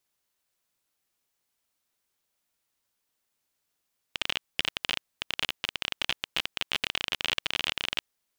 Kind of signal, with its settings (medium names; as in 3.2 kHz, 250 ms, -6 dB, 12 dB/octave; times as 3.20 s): random clicks 29 per s -10 dBFS 3.84 s